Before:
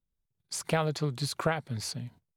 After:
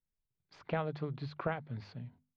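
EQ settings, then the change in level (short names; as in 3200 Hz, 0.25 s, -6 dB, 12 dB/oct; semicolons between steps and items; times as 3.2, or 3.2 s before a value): LPF 3700 Hz 12 dB/oct; air absorption 270 m; notches 50/100/150/200/250 Hz; -5.5 dB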